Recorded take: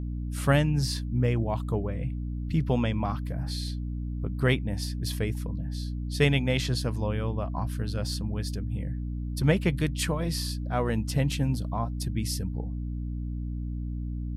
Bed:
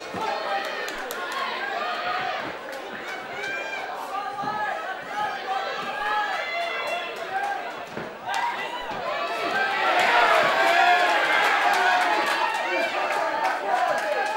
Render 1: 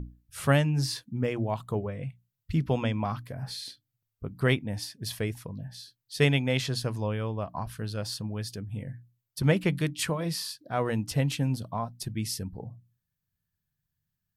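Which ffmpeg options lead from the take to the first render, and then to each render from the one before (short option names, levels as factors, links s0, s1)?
-af "bandreject=f=60:t=h:w=6,bandreject=f=120:t=h:w=6,bandreject=f=180:t=h:w=6,bandreject=f=240:t=h:w=6,bandreject=f=300:t=h:w=6"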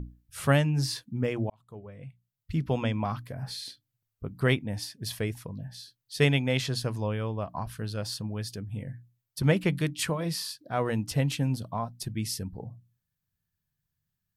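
-filter_complex "[0:a]asplit=2[s0][s1];[s0]atrim=end=1.5,asetpts=PTS-STARTPTS,afade=t=out:st=1.496:d=0.004:c=hsin[s2];[s1]atrim=start=1.5,asetpts=PTS-STARTPTS,afade=t=in:d=1.38[s3];[s2][s3]concat=n=2:v=0:a=1"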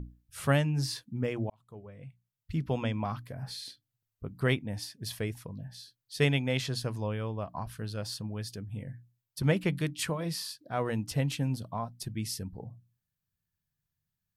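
-af "volume=0.708"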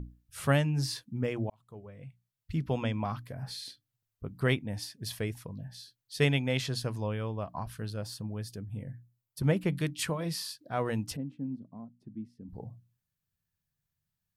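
-filter_complex "[0:a]asettb=1/sr,asplit=3[s0][s1][s2];[s0]atrim=end=7.904[s3];[s1]atrim=start=7.9:end=9.72,asetpts=PTS-STARTPTS,afade=t=in:d=0.004:c=qsin,afade=t=out:st=1.816:d=0.004:c=qsin,equalizer=f=3500:w=0.43:g=-5.5[s4];[s2]atrim=start=9.716[s5];[s3][s4]acrossfade=d=0.004:c1=hsin:c2=qsin[s6];[s6][s5]acrossfade=d=0.004:c1=qsin:c2=hsin,asplit=3[s7][s8][s9];[s7]afade=t=out:st=11.15:d=0.02[s10];[s8]bandpass=f=250:t=q:w=3.1,afade=t=in:st=11.15:d=0.02,afade=t=out:st=12.48:d=0.02[s11];[s9]afade=t=in:st=12.48:d=0.02[s12];[s10][s11][s12]amix=inputs=3:normalize=0"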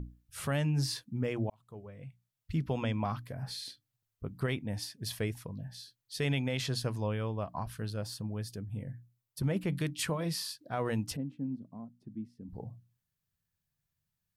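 -af "alimiter=limit=0.075:level=0:latency=1:release=39"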